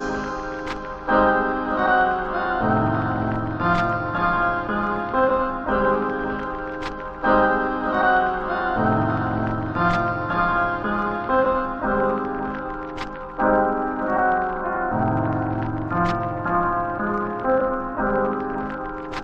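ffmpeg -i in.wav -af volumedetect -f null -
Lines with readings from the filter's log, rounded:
mean_volume: -22.1 dB
max_volume: -4.7 dB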